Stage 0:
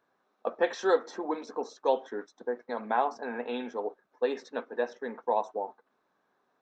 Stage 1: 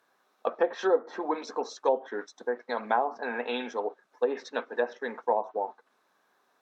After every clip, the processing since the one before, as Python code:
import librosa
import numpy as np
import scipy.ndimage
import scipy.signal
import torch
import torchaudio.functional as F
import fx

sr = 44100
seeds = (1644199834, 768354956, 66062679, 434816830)

y = fx.env_lowpass_down(x, sr, base_hz=670.0, full_db=-22.5)
y = fx.tilt_eq(y, sr, slope=2.5)
y = F.gain(torch.from_numpy(y), 4.5).numpy()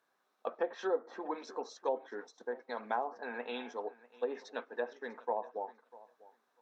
y = fx.echo_feedback(x, sr, ms=646, feedback_pct=15, wet_db=-20.5)
y = F.gain(torch.from_numpy(y), -8.5).numpy()